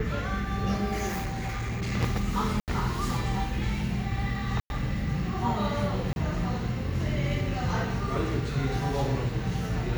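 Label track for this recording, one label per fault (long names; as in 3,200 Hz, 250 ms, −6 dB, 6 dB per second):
1.070000	1.930000	clipping −27.5 dBFS
2.600000	2.680000	drop-out 78 ms
4.600000	4.700000	drop-out 101 ms
6.130000	6.160000	drop-out 31 ms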